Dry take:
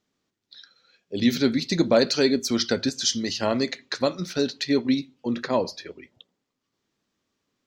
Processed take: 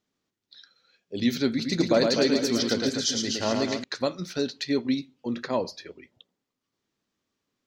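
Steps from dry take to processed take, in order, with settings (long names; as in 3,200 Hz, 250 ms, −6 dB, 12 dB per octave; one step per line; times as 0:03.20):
0:01.48–0:03.84: reverse bouncing-ball delay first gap 110 ms, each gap 1.25×, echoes 5
level −3.5 dB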